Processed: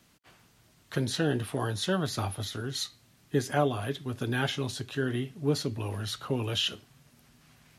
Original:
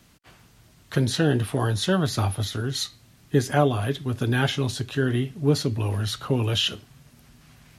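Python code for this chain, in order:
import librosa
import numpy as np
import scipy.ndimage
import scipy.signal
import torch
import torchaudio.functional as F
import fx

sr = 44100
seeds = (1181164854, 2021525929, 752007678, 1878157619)

y = fx.low_shelf(x, sr, hz=110.0, db=-8.5)
y = y * librosa.db_to_amplitude(-5.0)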